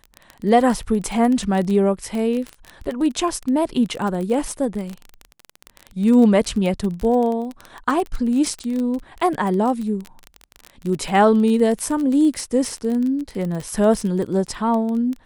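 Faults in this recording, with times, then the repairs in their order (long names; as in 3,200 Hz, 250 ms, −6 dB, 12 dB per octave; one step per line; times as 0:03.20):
surface crackle 24 per second −23 dBFS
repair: click removal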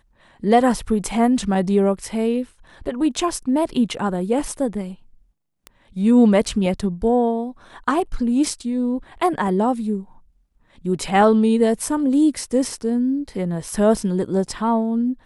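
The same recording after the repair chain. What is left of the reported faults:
none of them is left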